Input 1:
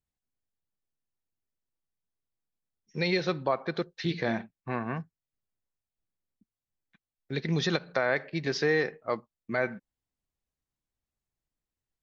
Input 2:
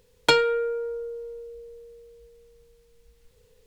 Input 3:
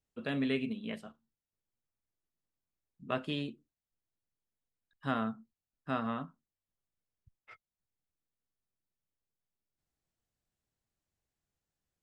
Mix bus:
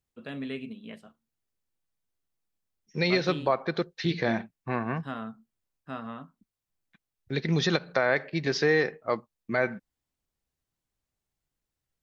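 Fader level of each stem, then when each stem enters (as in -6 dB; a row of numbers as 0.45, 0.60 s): +2.5 dB, off, -3.5 dB; 0.00 s, off, 0.00 s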